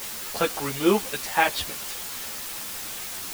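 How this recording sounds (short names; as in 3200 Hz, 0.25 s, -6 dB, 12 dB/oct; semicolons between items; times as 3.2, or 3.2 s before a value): random-step tremolo; a quantiser's noise floor 6-bit, dither triangular; a shimmering, thickened sound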